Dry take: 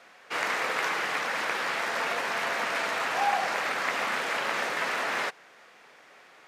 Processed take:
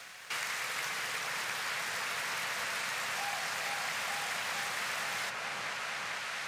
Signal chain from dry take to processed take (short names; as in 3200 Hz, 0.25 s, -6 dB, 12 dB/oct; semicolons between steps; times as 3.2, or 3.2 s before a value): EQ curve 120 Hz 0 dB, 310 Hz -18 dB, 9100 Hz +6 dB; sample leveller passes 1; on a send: repeats that get brighter 0.447 s, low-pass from 750 Hz, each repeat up 1 oct, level 0 dB; on the sum: three-band squash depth 70%; gain -6.5 dB